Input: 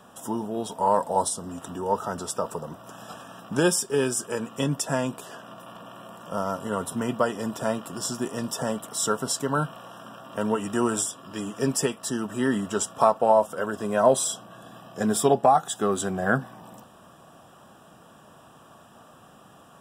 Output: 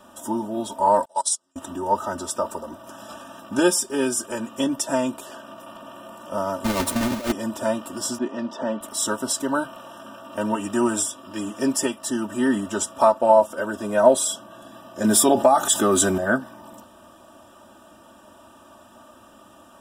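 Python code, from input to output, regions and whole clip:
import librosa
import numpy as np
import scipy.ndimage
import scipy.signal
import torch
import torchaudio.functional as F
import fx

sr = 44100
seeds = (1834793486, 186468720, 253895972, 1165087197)

y = fx.chain(x, sr, fx.weighting(curve='ITU-R 468'),
    fx.level_steps(step_db=12),
    fx.upward_expand(threshold_db=-41.0, expansion=2.5), at=(1.05, 1.56))
y = fx.chain(y, sr, fx.halfwave_hold(),
    fx.over_compress(threshold_db=-24.0, ratio=-0.5), at=(6.64, 7.32))
y = fx.chain(y, sr, fx.highpass(hz=150.0, slope=24),
    fx.air_absorb(metres=220.0), at=(8.18, 8.81))
y = fx.chain(y, sr, fx.high_shelf(hz=5200.0, db=6.0),
    fx.env_flatten(amount_pct=50), at=(15.04, 16.18))
y = fx.peak_eq(y, sr, hz=2100.0, db=-2.0, octaves=0.77)
y = y + 0.94 * np.pad(y, (int(3.3 * sr / 1000.0), 0))[:len(y)]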